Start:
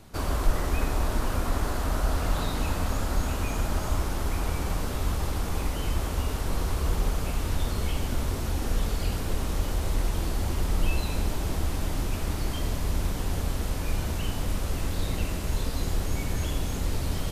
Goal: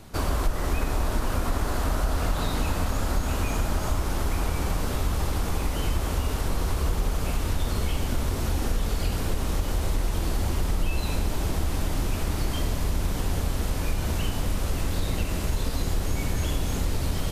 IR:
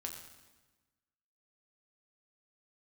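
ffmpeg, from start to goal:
-af "acompressor=threshold=-25dB:ratio=3,volume=4dB"

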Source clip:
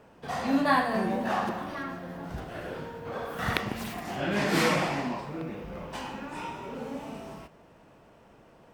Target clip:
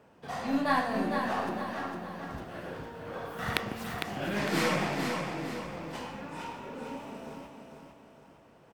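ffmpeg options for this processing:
ffmpeg -i in.wav -af "highpass=60,aeval=exprs='0.501*(cos(1*acos(clip(val(0)/0.501,-1,1)))-cos(1*PI/2))+0.0631*(cos(3*acos(clip(val(0)/0.501,-1,1)))-cos(3*PI/2))+0.00794*(cos(8*acos(clip(val(0)/0.501,-1,1)))-cos(8*PI/2))':channel_layout=same,aecho=1:1:455|910|1365|1820|2275:0.501|0.21|0.0884|0.0371|0.0156" out.wav

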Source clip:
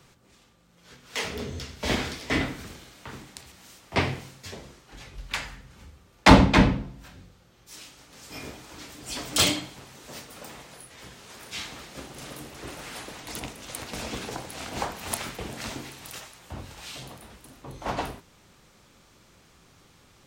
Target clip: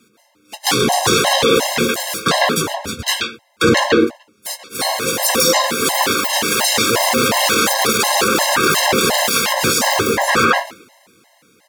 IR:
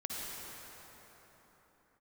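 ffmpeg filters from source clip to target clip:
-filter_complex "[0:a]highpass=100,bandreject=frequency=187.4:width_type=h:width=4,bandreject=frequency=374.8:width_type=h:width=4,bandreject=frequency=562.2:width_type=h:width=4,bandreject=frequency=749.6:width_type=h:width=4,bandreject=frequency=937:width_type=h:width=4,bandreject=frequency=1124.4:width_type=h:width=4,bandreject=frequency=1311.8:width_type=h:width=4,asplit=2[link_01][link_02];[link_02]acrusher=bits=4:mix=0:aa=0.5,volume=-8.5dB[link_03];[link_01][link_03]amix=inputs=2:normalize=0,highshelf=frequency=10000:gain=-5.5,acrusher=bits=8:mode=log:mix=0:aa=0.000001,dynaudnorm=framelen=350:gausssize=13:maxgain=14dB,agate=range=-20dB:threshold=-49dB:ratio=16:detection=peak,asetrate=76440,aresample=44100,flanger=delay=8.8:depth=2.7:regen=-51:speed=0.27:shape=sinusoidal,asplit=2[link_04][link_05];[link_05]adelay=130,highpass=300,lowpass=3400,asoftclip=type=hard:threshold=-14.5dB,volume=-6dB[link_06];[link_04][link_06]amix=inputs=2:normalize=0,alimiter=level_in=31.5dB:limit=-1dB:release=50:level=0:latency=1,afftfilt=real='re*gt(sin(2*PI*2.8*pts/sr)*(1-2*mod(floor(b*sr/1024/540),2)),0)':imag='im*gt(sin(2*PI*2.8*pts/sr)*(1-2*mod(floor(b*sr/1024/540),2)),0)':win_size=1024:overlap=0.75,volume=-1dB"

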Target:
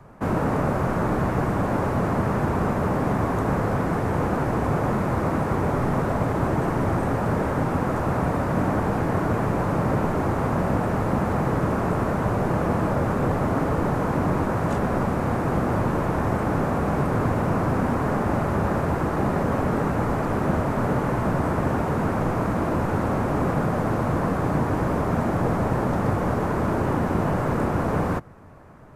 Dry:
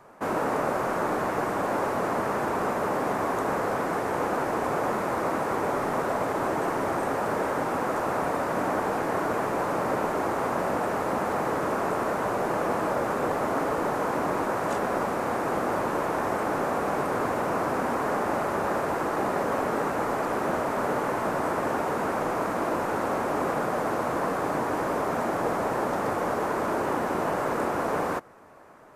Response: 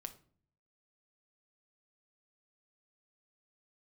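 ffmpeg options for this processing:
-filter_complex "[0:a]bass=frequency=250:gain=13,treble=frequency=4000:gain=-3,acrossover=split=150[link_01][link_02];[link_01]acontrast=53[link_03];[link_03][link_02]amix=inputs=2:normalize=0"

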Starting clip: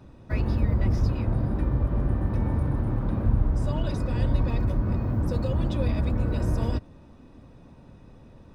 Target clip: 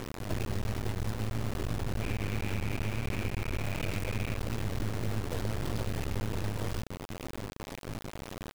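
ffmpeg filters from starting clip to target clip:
ffmpeg -i in.wav -filter_complex "[0:a]asoftclip=type=tanh:threshold=-27dB,equalizer=frequency=100:width_type=o:width=0.67:gain=11,equalizer=frequency=400:width_type=o:width=0.67:gain=8,equalizer=frequency=2500:width_type=o:width=0.67:gain=4,acrossover=split=1200[link_01][link_02];[link_02]adelay=40[link_03];[link_01][link_03]amix=inputs=2:normalize=0,acompressor=mode=upward:threshold=-42dB:ratio=2.5,bandreject=frequency=60:width_type=h:width=6,bandreject=frequency=120:width_type=h:width=6,bandreject=frequency=180:width_type=h:width=6,bandreject=frequency=240:width_type=h:width=6,asplit=2[link_04][link_05];[link_05]adelay=18,volume=-11dB[link_06];[link_04][link_06]amix=inputs=2:normalize=0,acompressor=threshold=-31dB:ratio=20,acrusher=bits=4:dc=4:mix=0:aa=0.000001,asettb=1/sr,asplit=3[link_07][link_08][link_09];[link_07]atrim=end=2.014[link_10];[link_08]atrim=start=2.01:end=4.38,asetpts=PTS-STARTPTS,afade=type=in:duration=0.004:curve=qsin,afade=type=out:start_time=2.366:duration=0.004:curve=qsin,equalizer=frequency=2400:width_type=o:width=0.37:gain=11.5[link_11];[link_09]atrim=start=4.376[link_12];[link_10][link_11]acrossfade=duration=0.004:curve1=hsin:curve2=qsin[link_13];[link_13][link_12]acrossfade=duration=0.004:curve1=qsin:curve2=hsin,volume=5dB" out.wav

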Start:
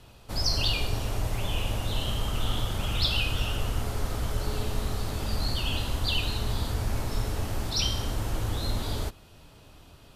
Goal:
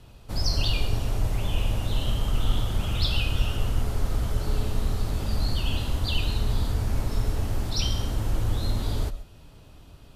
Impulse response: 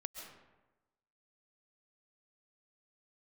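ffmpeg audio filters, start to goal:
-filter_complex "[0:a]asplit=2[link_01][link_02];[1:a]atrim=start_sample=2205,atrim=end_sample=6174,lowshelf=frequency=410:gain=10[link_03];[link_02][link_03]afir=irnorm=-1:irlink=0,volume=3.5dB[link_04];[link_01][link_04]amix=inputs=2:normalize=0,volume=-8dB"

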